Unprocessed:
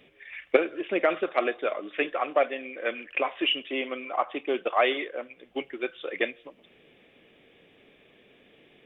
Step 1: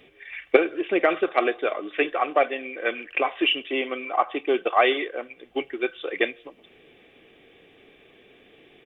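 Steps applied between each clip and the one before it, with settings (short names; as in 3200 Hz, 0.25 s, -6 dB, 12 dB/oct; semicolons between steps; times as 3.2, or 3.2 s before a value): comb 2.6 ms, depth 31%; gain +3.5 dB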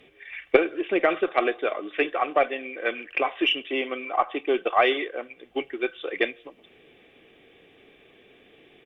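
added harmonics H 2 -24 dB, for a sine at -1 dBFS; gain -1 dB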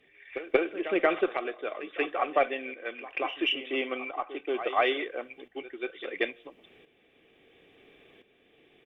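tremolo saw up 0.73 Hz, depth 70%; pre-echo 0.183 s -13 dB; gain -1.5 dB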